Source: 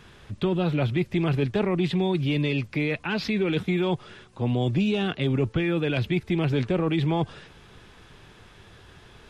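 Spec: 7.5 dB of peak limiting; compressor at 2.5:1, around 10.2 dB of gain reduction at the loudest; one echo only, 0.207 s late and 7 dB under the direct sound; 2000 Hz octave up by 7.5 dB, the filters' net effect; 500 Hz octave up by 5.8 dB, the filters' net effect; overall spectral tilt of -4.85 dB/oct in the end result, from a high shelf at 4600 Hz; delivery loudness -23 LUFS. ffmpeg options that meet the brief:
-af "equalizer=f=500:t=o:g=7.5,equalizer=f=2k:t=o:g=7.5,highshelf=f=4.6k:g=7.5,acompressor=threshold=-32dB:ratio=2.5,alimiter=level_in=1dB:limit=-24dB:level=0:latency=1,volume=-1dB,aecho=1:1:207:0.447,volume=10.5dB"

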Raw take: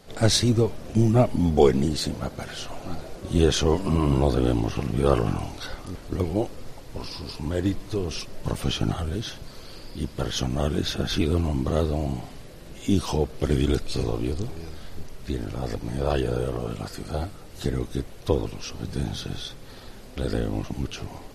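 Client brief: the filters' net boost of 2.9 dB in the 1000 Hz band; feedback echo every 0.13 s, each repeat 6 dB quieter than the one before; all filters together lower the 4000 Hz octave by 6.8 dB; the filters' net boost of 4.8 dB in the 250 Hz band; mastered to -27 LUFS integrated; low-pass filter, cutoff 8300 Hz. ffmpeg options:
-af "lowpass=8.3k,equalizer=f=250:t=o:g=6,equalizer=f=1k:t=o:g=4,equalizer=f=4k:t=o:g=-8.5,aecho=1:1:130|260|390|520|650|780:0.501|0.251|0.125|0.0626|0.0313|0.0157,volume=-4.5dB"

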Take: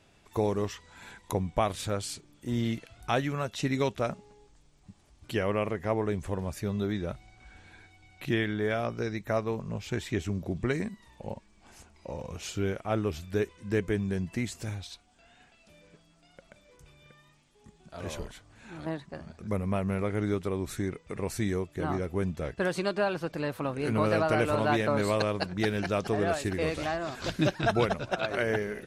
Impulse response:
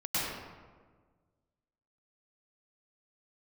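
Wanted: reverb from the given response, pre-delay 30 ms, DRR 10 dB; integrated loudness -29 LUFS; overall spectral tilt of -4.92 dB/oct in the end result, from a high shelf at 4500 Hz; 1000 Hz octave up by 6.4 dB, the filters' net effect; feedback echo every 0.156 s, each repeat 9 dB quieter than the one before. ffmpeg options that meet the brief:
-filter_complex "[0:a]equalizer=f=1k:t=o:g=8.5,highshelf=f=4.5k:g=3,aecho=1:1:156|312|468|624:0.355|0.124|0.0435|0.0152,asplit=2[a][b];[1:a]atrim=start_sample=2205,adelay=30[c];[b][c]afir=irnorm=-1:irlink=0,volume=-18.5dB[d];[a][d]amix=inputs=2:normalize=0,volume=-1.5dB"

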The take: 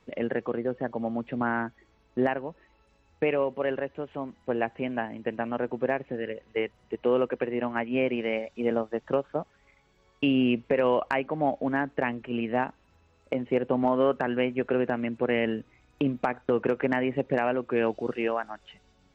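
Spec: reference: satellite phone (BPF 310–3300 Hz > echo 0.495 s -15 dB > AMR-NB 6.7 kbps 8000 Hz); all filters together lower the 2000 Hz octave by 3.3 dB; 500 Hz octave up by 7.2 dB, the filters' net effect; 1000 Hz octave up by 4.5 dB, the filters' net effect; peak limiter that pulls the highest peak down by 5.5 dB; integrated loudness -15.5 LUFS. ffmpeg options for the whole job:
-af "equalizer=f=500:t=o:g=8.5,equalizer=f=1k:t=o:g=3.5,equalizer=f=2k:t=o:g=-5.5,alimiter=limit=-11.5dB:level=0:latency=1,highpass=310,lowpass=3.3k,aecho=1:1:495:0.178,volume=10dB" -ar 8000 -c:a libopencore_amrnb -b:a 6700

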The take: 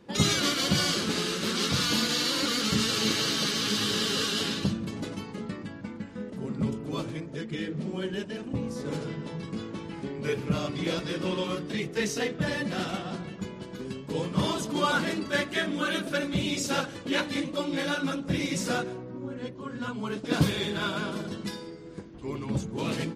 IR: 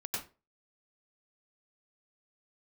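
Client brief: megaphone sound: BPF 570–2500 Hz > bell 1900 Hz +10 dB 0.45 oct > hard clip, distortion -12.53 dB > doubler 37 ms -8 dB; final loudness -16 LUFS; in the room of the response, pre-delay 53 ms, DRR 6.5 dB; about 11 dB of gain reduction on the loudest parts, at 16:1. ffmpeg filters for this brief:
-filter_complex "[0:a]acompressor=threshold=-29dB:ratio=16,asplit=2[a][b];[1:a]atrim=start_sample=2205,adelay=53[c];[b][c]afir=irnorm=-1:irlink=0,volume=-9dB[d];[a][d]amix=inputs=2:normalize=0,highpass=570,lowpass=2.5k,equalizer=f=1.9k:t=o:w=0.45:g=10,asoftclip=type=hard:threshold=-32dB,asplit=2[e][f];[f]adelay=37,volume=-8dB[g];[e][g]amix=inputs=2:normalize=0,volume=21dB"

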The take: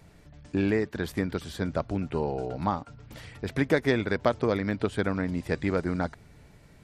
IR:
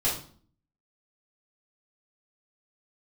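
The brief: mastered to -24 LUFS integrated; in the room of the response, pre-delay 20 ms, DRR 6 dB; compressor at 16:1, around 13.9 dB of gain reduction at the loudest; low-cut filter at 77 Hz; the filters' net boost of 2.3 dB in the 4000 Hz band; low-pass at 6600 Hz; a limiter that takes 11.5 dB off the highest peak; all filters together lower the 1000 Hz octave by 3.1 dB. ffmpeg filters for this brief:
-filter_complex "[0:a]highpass=77,lowpass=6.6k,equalizer=f=1k:t=o:g=-4.5,equalizer=f=4k:t=o:g=3.5,acompressor=threshold=-33dB:ratio=16,alimiter=level_in=7dB:limit=-24dB:level=0:latency=1,volume=-7dB,asplit=2[a][b];[1:a]atrim=start_sample=2205,adelay=20[c];[b][c]afir=irnorm=-1:irlink=0,volume=-15.5dB[d];[a][d]amix=inputs=2:normalize=0,volume=17.5dB"

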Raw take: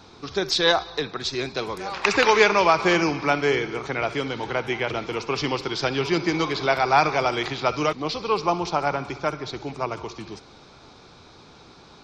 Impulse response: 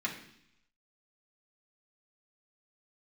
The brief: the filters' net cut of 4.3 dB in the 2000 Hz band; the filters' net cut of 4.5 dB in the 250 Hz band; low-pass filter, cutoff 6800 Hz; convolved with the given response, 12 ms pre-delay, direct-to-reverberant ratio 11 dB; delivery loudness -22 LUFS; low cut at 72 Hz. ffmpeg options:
-filter_complex "[0:a]highpass=72,lowpass=6.8k,equalizer=f=250:t=o:g=-7,equalizer=f=2k:t=o:g=-5.5,asplit=2[a][b];[1:a]atrim=start_sample=2205,adelay=12[c];[b][c]afir=irnorm=-1:irlink=0,volume=-16dB[d];[a][d]amix=inputs=2:normalize=0,volume=3.5dB"

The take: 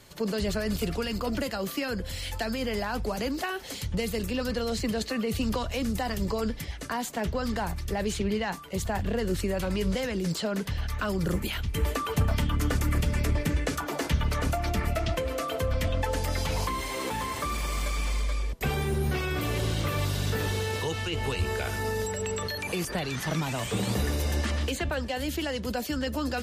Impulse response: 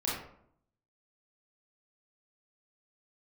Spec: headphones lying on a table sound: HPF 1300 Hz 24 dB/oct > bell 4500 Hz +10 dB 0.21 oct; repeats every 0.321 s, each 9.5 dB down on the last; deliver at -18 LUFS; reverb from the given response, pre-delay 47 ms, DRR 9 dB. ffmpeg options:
-filter_complex "[0:a]aecho=1:1:321|642|963|1284:0.335|0.111|0.0365|0.012,asplit=2[a][b];[1:a]atrim=start_sample=2205,adelay=47[c];[b][c]afir=irnorm=-1:irlink=0,volume=-15.5dB[d];[a][d]amix=inputs=2:normalize=0,highpass=f=1.3k:w=0.5412,highpass=f=1.3k:w=1.3066,equalizer=f=4.5k:t=o:w=0.21:g=10,volume=15.5dB"

